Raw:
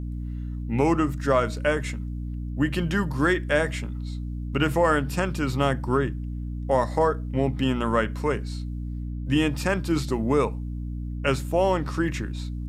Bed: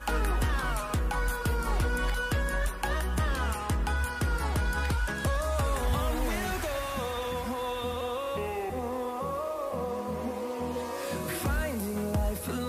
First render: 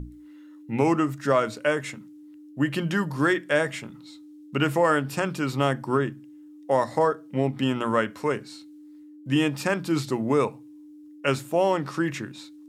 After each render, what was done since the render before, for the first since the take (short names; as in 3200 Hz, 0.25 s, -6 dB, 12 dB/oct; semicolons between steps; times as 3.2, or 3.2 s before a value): notches 60/120/180/240 Hz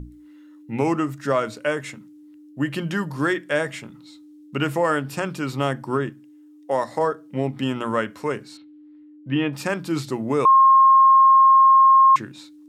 6.09–7.01 HPF 210 Hz 6 dB/oct; 8.57–9.53 LPF 3300 Hz 24 dB/oct; 10.45–12.16 bleep 1070 Hz -9.5 dBFS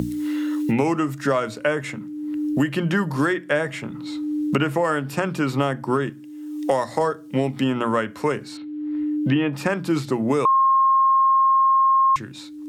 three-band squash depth 100%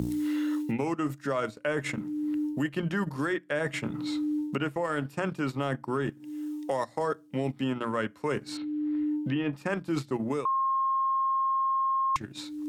reverse; compressor 5:1, threshold -27 dBFS, peak gain reduction 12 dB; reverse; transient shaper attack +1 dB, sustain -11 dB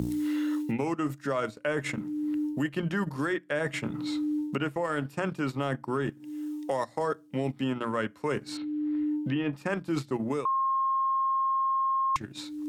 nothing audible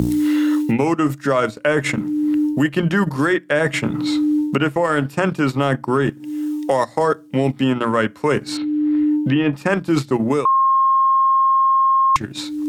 gain +12 dB